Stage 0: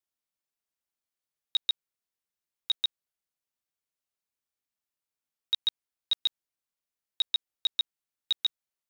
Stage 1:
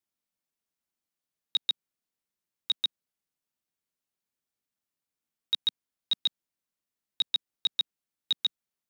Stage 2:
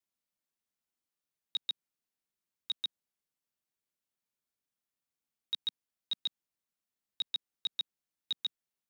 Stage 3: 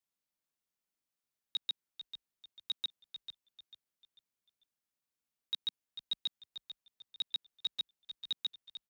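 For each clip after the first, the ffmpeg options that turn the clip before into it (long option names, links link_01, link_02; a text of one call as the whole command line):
ffmpeg -i in.wav -af "equalizer=frequency=210:width=0.95:gain=7" out.wav
ffmpeg -i in.wav -af "alimiter=limit=-23dB:level=0:latency=1,volume=-3dB" out.wav
ffmpeg -i in.wav -filter_complex "[0:a]asplit=5[link_01][link_02][link_03][link_04][link_05];[link_02]adelay=444,afreqshift=-54,volume=-10.5dB[link_06];[link_03]adelay=888,afreqshift=-108,volume=-20.1dB[link_07];[link_04]adelay=1332,afreqshift=-162,volume=-29.8dB[link_08];[link_05]adelay=1776,afreqshift=-216,volume=-39.4dB[link_09];[link_01][link_06][link_07][link_08][link_09]amix=inputs=5:normalize=0,volume=-1.5dB" out.wav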